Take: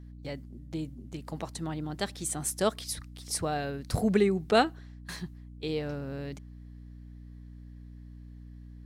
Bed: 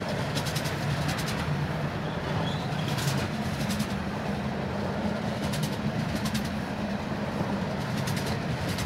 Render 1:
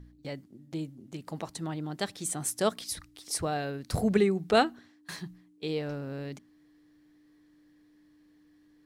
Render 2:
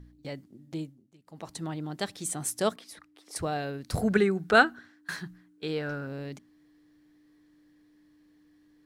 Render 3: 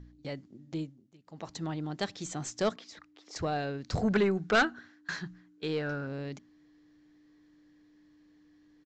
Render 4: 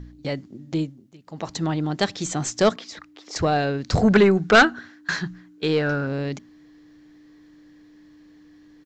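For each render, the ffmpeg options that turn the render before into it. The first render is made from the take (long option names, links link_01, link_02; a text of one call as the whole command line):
ffmpeg -i in.wav -af "bandreject=frequency=60:width_type=h:width=4,bandreject=frequency=120:width_type=h:width=4,bandreject=frequency=180:width_type=h:width=4,bandreject=frequency=240:width_type=h:width=4" out.wav
ffmpeg -i in.wav -filter_complex "[0:a]asettb=1/sr,asplit=3[link_01][link_02][link_03];[link_01]atrim=end=2.764[link_04];[link_02]atrim=start=2.76:end=3.36,asetpts=PTS-STARTPTS,afade=type=in:duration=0.004:curve=qsin,afade=type=out:start_time=0.596:duration=0.004:curve=qsin,acrossover=split=230 2400:gain=0.0708 1 0.224[link_05][link_06][link_07];[link_05][link_06][link_07]amix=inputs=3:normalize=0[link_08];[link_03]atrim=start=3.356[link_09];[link_04][link_08]acrossfade=duration=0.004:curve1=hsin:curve2=qsin[link_10];[link_10][link_09]acrossfade=duration=0.004:curve1=qsin:curve2=hsin,asettb=1/sr,asplit=3[link_11][link_12][link_13];[link_11]atrim=end=4.014[link_14];[link_12]atrim=start=4.01:end=6.07,asetpts=PTS-STARTPTS,afade=type=in:duration=0.004:curve=qsin,afade=type=out:start_time=2.056:duration=0.004:curve=qsin,equalizer=frequency=1500:width_type=o:width=0.43:gain=13[link_15];[link_13]atrim=start=6.066[link_16];[link_14][link_15]acrossfade=duration=0.004:curve1=hsin:curve2=qsin[link_17];[link_17][link_16]acrossfade=duration=0.004:curve1=qsin:curve2=hsin,asplit=3[link_18][link_19][link_20];[link_18]atrim=end=1.13,asetpts=PTS-STARTPTS,afade=type=out:start_time=0.81:duration=0.32:curve=qua:silence=0.112202[link_21];[link_19]atrim=start=1.13:end=1.19,asetpts=PTS-STARTPTS,volume=-19dB[link_22];[link_20]atrim=start=1.19,asetpts=PTS-STARTPTS,afade=type=in:duration=0.32:curve=qua:silence=0.112202[link_23];[link_21][link_22][link_23]concat=n=3:v=0:a=1" out.wav
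ffmpeg -i in.wav -af "aeval=exprs='0.531*(cos(1*acos(clip(val(0)/0.531,-1,1)))-cos(1*PI/2))+0.00841*(cos(8*acos(clip(val(0)/0.531,-1,1)))-cos(8*PI/2))':channel_layout=same,aresample=16000,asoftclip=type=tanh:threshold=-19dB,aresample=44100" out.wav
ffmpeg -i in.wav -af "volume=11dB" out.wav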